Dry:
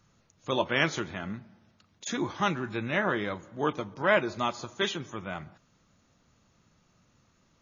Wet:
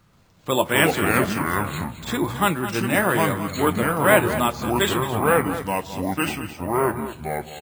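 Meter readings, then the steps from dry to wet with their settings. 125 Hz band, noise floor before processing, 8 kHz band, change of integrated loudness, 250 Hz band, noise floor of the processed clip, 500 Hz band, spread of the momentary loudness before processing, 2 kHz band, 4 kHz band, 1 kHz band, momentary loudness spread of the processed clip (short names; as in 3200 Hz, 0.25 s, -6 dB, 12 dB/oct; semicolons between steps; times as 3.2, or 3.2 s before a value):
+12.0 dB, -68 dBFS, n/a, +8.5 dB, +11.0 dB, -56 dBFS, +10.0 dB, 14 LU, +8.5 dB, +7.0 dB, +11.0 dB, 10 LU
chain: echoes that change speed 0.132 s, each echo -4 st, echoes 2; careless resampling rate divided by 4×, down filtered, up hold; echo 0.214 s -12 dB; gain +7 dB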